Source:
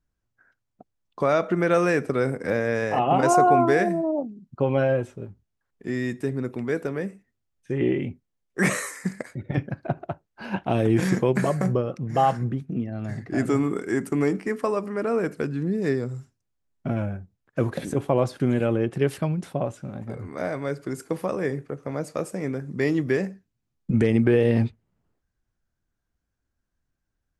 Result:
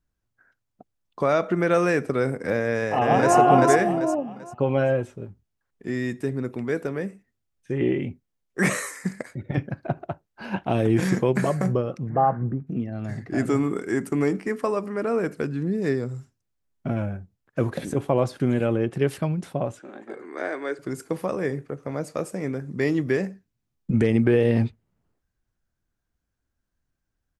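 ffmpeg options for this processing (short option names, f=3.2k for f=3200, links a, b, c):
-filter_complex "[0:a]asplit=2[a][b];[b]afade=t=in:st=2.62:d=0.01,afade=t=out:st=3.36:d=0.01,aecho=0:1:390|780|1170|1560:0.944061|0.283218|0.0849655|0.0254896[c];[a][c]amix=inputs=2:normalize=0,asettb=1/sr,asplit=3[d][e][f];[d]atrim=end=12.094[g];[e]atrim=start=12.09:end=12.67,asetpts=PTS-STARTPTS,afade=t=in:d=0.004:c=qsin,afade=t=out:st=0.576:d=0.004:c=qsin,lowpass=f=1.5k:w=0.5412,lowpass=f=1.5k:w=1.3066[h];[f]atrim=start=12.666[i];[g][h]acrossfade=d=0.004:c1=hsin:c2=qsin[j];[j][i]acrossfade=d=0.004:c1=qsin:c2=hsin,asettb=1/sr,asplit=3[k][l][m];[k]atrim=end=19.794[n];[l]atrim=start=19.79:end=20.79,asetpts=PTS-STARTPTS,afade=t=in:d=0.004:c=qsin,afade=t=out:st=0.996:d=0.004:c=qsin,highpass=f=300:w=0.5412,highpass=f=300:w=1.3066,equalizer=f=350:t=q:w=4:g=7,equalizer=f=570:t=q:w=4:g=-4,equalizer=f=1.7k:t=q:w=4:g=7,equalizer=f=3.3k:t=q:w=4:g=3,equalizer=f=5.3k:t=q:w=4:g=-7,lowpass=f=9k:w=0.5412,lowpass=f=9k:w=1.3066[o];[m]atrim=start=20.786[p];[n][o]acrossfade=d=0.004:c1=hsin:c2=qsin[q];[q][p]acrossfade=d=0.004:c1=qsin:c2=hsin"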